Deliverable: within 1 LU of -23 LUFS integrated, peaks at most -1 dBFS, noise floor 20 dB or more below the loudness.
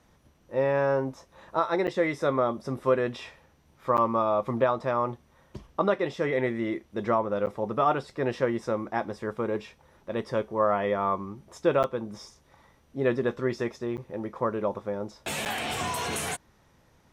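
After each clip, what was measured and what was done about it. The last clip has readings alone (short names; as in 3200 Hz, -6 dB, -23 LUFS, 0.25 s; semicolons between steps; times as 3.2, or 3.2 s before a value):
dropouts 6; longest dropout 8.8 ms; loudness -28.5 LUFS; peak -11.0 dBFS; loudness target -23.0 LUFS
-> interpolate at 1.87/3.97/7.46/11.83/13.97/15.45, 8.8 ms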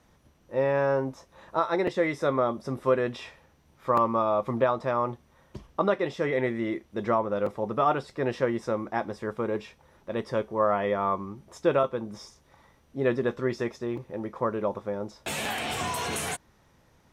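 dropouts 0; loudness -28.5 LUFS; peak -11.0 dBFS; loudness target -23.0 LUFS
-> gain +5.5 dB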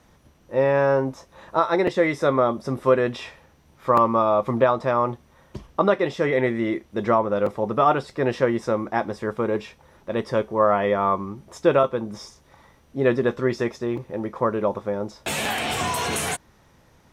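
loudness -23.0 LUFS; peak -5.5 dBFS; noise floor -57 dBFS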